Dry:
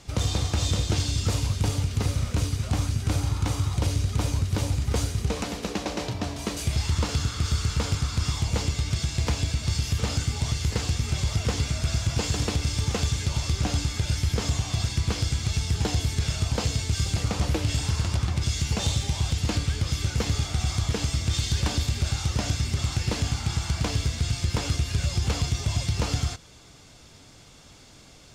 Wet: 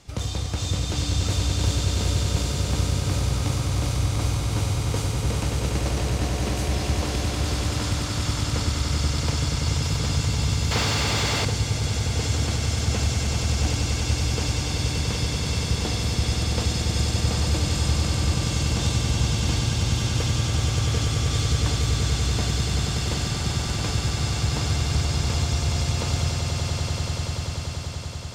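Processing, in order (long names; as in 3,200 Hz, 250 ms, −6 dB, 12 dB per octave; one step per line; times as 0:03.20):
echo that builds up and dies away 96 ms, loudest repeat 8, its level −7 dB
0:10.71–0:11.45: mid-hump overdrive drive 21 dB, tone 2,700 Hz, clips at −9 dBFS
level −3 dB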